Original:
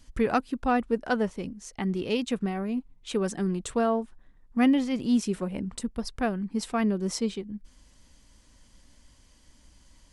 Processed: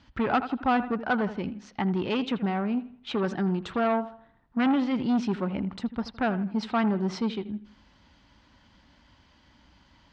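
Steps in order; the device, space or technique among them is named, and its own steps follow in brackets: analogue delay pedal into a guitar amplifier (bucket-brigade echo 81 ms, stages 2048, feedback 37%, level -16 dB; valve stage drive 24 dB, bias 0.25; cabinet simulation 75–4200 Hz, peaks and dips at 470 Hz -5 dB, 850 Hz +6 dB, 1.4 kHz +5 dB); trim +4 dB

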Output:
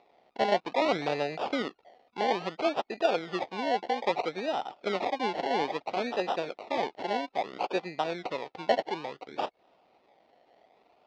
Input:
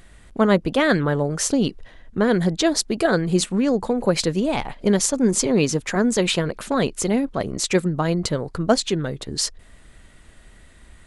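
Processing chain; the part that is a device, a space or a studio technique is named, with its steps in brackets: 0.80–1.62 s: bass shelf 180 Hz +11 dB; circuit-bent sampling toy (decimation with a swept rate 28×, swing 60% 0.6 Hz; cabinet simulation 500–4100 Hz, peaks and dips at 750 Hz +7 dB, 1.1 kHz -5 dB, 1.6 kHz -10 dB, 3.1 kHz -4 dB); trim -5.5 dB

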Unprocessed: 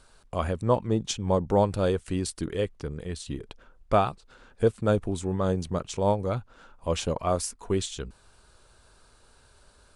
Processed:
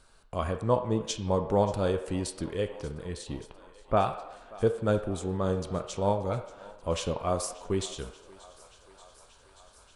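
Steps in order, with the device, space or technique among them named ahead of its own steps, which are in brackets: filtered reverb send (on a send at -6 dB: high-pass 430 Hz 12 dB/octave + low-pass 4.2 kHz 12 dB/octave + reverberation RT60 1.0 s, pre-delay 12 ms); 3.44–3.97 s: on the sum: low-pass 1.7 kHz 12 dB/octave; thinning echo 582 ms, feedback 83%, high-pass 450 Hz, level -20 dB; trim -3 dB

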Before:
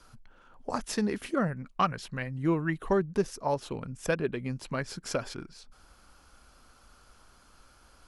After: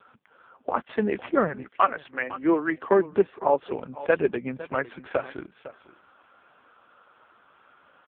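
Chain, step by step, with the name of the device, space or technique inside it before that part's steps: 1.63–3.72 s: high-pass 340 Hz -> 130 Hz 24 dB/octave; satellite phone (band-pass 310–3100 Hz; delay 505 ms -16.5 dB; trim +9 dB; AMR-NB 5.15 kbps 8 kHz)

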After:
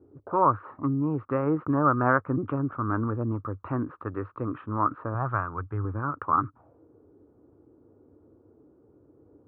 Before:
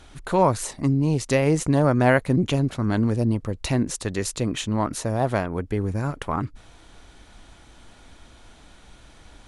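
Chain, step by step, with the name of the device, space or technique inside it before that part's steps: envelope filter bass rig (touch-sensitive low-pass 370–1300 Hz up, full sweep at -25.5 dBFS; cabinet simulation 88–2300 Hz, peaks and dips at 97 Hz +5 dB, 190 Hz -8 dB, 300 Hz +6 dB, 680 Hz -5 dB, 1.2 kHz +7 dB, 2 kHz -8 dB); 5.14–5.85 s: graphic EQ 125/250/500/4000/8000 Hz +6/-8/-5/+7/+11 dB; trim -7.5 dB

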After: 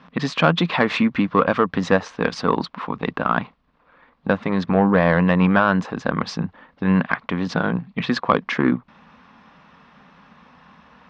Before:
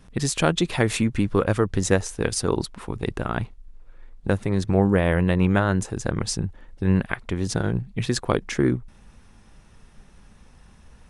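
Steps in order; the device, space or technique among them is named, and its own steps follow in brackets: overdrive pedal into a guitar cabinet (overdrive pedal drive 16 dB, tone 2 kHz, clips at -2.5 dBFS; cabinet simulation 97–4600 Hz, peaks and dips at 110 Hz -10 dB, 170 Hz +7 dB, 250 Hz +6 dB, 370 Hz -8 dB, 1.1 kHz +7 dB)

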